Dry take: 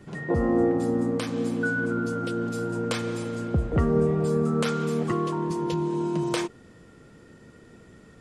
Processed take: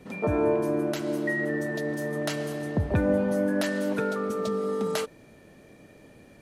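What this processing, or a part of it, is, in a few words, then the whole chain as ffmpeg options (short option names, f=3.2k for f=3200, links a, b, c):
nightcore: -af "asetrate=56448,aresample=44100,volume=-1.5dB"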